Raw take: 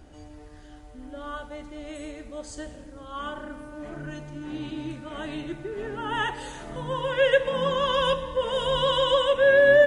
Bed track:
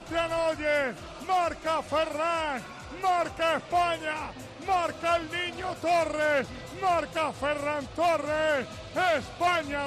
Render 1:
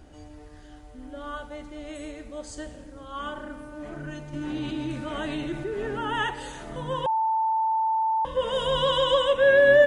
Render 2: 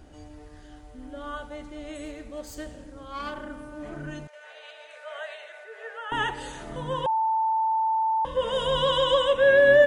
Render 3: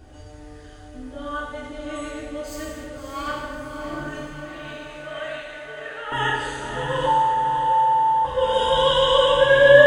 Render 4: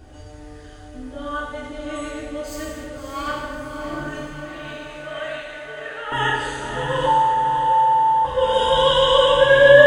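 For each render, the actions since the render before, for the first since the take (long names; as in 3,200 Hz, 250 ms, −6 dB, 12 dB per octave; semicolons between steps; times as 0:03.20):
0:04.33–0:06.16: envelope flattener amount 50%; 0:07.06–0:08.25: beep over 887 Hz −21 dBFS
0:02.05–0:03.45: phase distortion by the signal itself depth 0.09 ms; 0:04.27–0:06.12: Chebyshev high-pass with heavy ripple 450 Hz, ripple 9 dB
on a send: feedback delay with all-pass diffusion 603 ms, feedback 52%, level −7 dB; on the sum: reverb whose tail is shaped and stops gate 360 ms falling, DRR −4 dB
level +2 dB; brickwall limiter −1 dBFS, peak gain reduction 1.5 dB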